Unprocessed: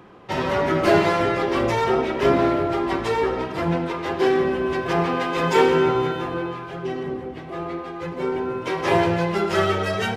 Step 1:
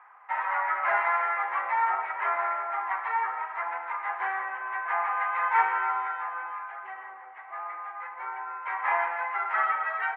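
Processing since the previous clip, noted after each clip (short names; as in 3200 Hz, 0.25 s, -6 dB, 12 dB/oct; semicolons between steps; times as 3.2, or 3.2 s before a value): Chebyshev band-pass 820–2100 Hz, order 3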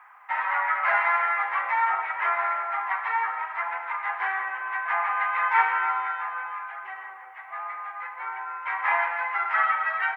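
tilt +3.5 dB/oct; gain +1.5 dB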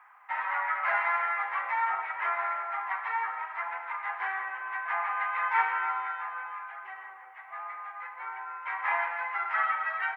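ending taper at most 490 dB/s; gain -5 dB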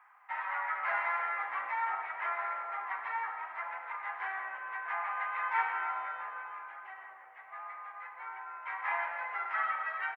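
frequency-shifting echo 0.102 s, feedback 64%, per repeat -66 Hz, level -16 dB; gain -5 dB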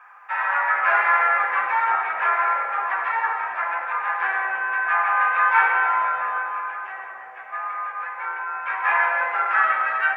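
reverb RT60 1.1 s, pre-delay 3 ms, DRR 3 dB; gain +6 dB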